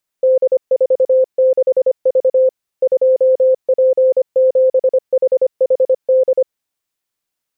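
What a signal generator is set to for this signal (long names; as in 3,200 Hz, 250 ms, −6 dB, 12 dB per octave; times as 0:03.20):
Morse code "D46V 2P7HHD" 25 words per minute 519 Hz −8 dBFS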